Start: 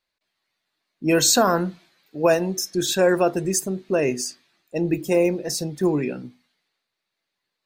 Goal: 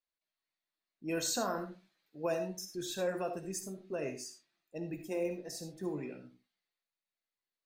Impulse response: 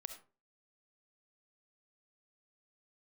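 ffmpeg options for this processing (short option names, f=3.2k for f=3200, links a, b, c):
-filter_complex "[0:a]flanger=delay=5.7:depth=4.4:regen=-64:speed=0.45:shape=sinusoidal[a];[1:a]atrim=start_sample=2205,afade=t=out:st=0.2:d=0.01,atrim=end_sample=9261[b];[a][b]afir=irnorm=-1:irlink=0,volume=-8.5dB"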